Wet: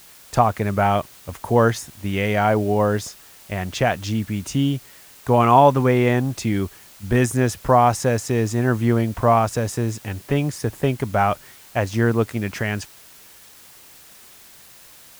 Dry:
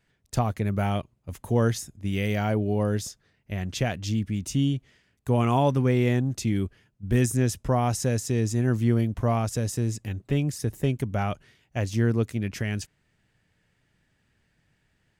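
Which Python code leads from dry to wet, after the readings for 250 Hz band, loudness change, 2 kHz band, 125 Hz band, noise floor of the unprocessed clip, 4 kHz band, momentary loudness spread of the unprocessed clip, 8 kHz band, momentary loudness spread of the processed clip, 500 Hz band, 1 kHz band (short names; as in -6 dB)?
+4.0 dB, +6.0 dB, +9.0 dB, +2.0 dB, -71 dBFS, +4.5 dB, 11 LU, +3.0 dB, 13 LU, +8.5 dB, +12.5 dB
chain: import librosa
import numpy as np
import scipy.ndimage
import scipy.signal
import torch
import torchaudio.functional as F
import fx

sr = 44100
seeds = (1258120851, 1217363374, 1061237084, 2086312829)

p1 = fx.peak_eq(x, sr, hz=990.0, db=12.0, octaves=2.3)
p2 = fx.quant_dither(p1, sr, seeds[0], bits=6, dither='triangular')
p3 = p1 + (p2 * 10.0 ** (-9.5 / 20.0))
y = p3 * 10.0 ** (-1.0 / 20.0)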